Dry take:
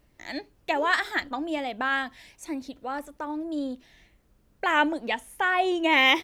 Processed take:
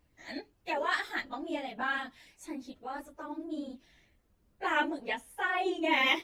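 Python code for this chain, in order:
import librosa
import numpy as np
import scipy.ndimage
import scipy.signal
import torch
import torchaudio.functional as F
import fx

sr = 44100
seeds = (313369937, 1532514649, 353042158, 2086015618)

y = fx.phase_scramble(x, sr, seeds[0], window_ms=50)
y = y * librosa.db_to_amplitude(-7.0)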